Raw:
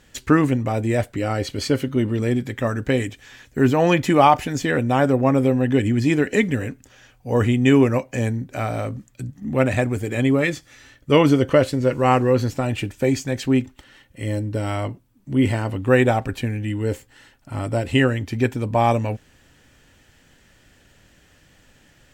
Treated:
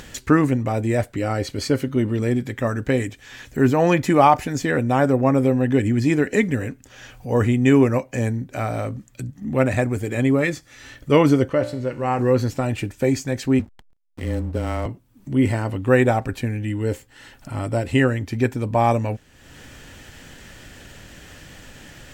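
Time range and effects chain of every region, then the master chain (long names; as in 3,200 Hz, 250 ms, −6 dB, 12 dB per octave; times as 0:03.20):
0:11.48–0:12.19: high-shelf EQ 6,300 Hz −5.5 dB + tuned comb filter 59 Hz, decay 0.59 s
0:13.59–0:14.86: frequency shifter −20 Hz + slack as between gear wheels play −33 dBFS
whole clip: dynamic equaliser 3,100 Hz, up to −6 dB, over −44 dBFS, Q 2.7; upward compression, threshold −30 dBFS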